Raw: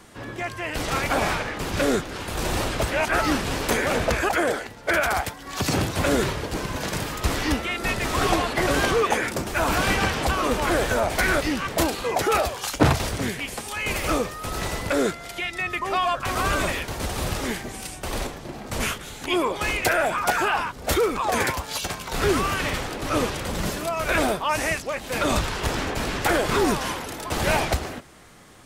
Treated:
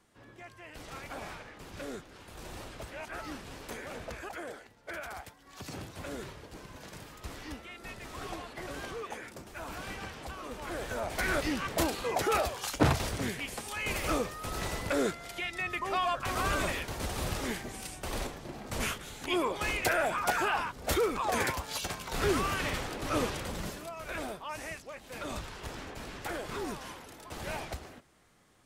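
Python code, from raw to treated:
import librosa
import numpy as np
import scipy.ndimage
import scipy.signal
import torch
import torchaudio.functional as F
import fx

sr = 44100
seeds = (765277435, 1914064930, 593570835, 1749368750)

y = fx.gain(x, sr, db=fx.line((10.49, -19.0), (11.45, -7.0), (23.37, -7.0), (23.95, -16.0)))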